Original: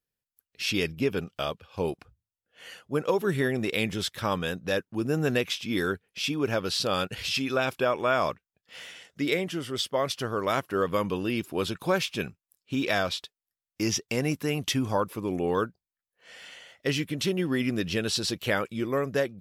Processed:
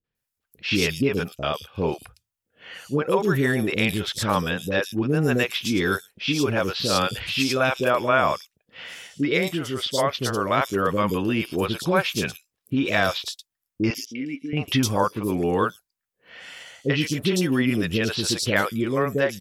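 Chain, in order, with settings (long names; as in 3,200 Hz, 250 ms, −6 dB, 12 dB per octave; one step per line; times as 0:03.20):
0:13.90–0:14.53: formant filter i
three-band delay without the direct sound lows, mids, highs 40/150 ms, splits 490/4,200 Hz
level +6.5 dB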